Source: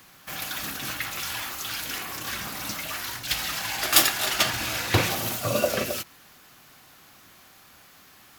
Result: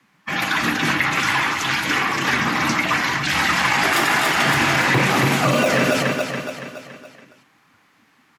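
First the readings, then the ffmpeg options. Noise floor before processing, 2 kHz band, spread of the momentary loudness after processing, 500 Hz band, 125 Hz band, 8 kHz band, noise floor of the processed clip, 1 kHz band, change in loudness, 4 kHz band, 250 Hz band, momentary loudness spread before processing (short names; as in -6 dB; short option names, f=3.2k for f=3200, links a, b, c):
-53 dBFS, +12.5 dB, 8 LU, +8.0 dB, +9.5 dB, 0.0 dB, -59 dBFS, +12.5 dB, +7.5 dB, +4.5 dB, +13.5 dB, 12 LU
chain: -filter_complex "[0:a]lowpass=10k,acrossover=split=1200[a][b];[a]acrusher=samples=17:mix=1:aa=0.000001:lfo=1:lforange=10.2:lforate=1.4[c];[c][b]amix=inputs=2:normalize=0,afftdn=nr=20:nf=-43,asoftclip=type=hard:threshold=-12.5dB,dynaudnorm=f=240:g=3:m=3dB,equalizer=f=450:t=o:w=0.25:g=4.5,asplit=2[d][e];[e]aecho=0:1:282|564|846|1128|1410:0.316|0.155|0.0759|0.0372|0.0182[f];[d][f]amix=inputs=2:normalize=0,alimiter=limit=-19dB:level=0:latency=1:release=29,equalizer=f=125:t=o:w=1:g=7,equalizer=f=250:t=o:w=1:g=10,equalizer=f=1k:t=o:w=1:g=11,equalizer=f=2k:t=o:w=1:g=10,afreqshift=22,acrossover=split=2000|6900[g][h][i];[g]acompressor=threshold=-18dB:ratio=4[j];[h]acompressor=threshold=-29dB:ratio=4[k];[i]acompressor=threshold=-34dB:ratio=4[l];[j][k][l]amix=inputs=3:normalize=0,volume=4.5dB"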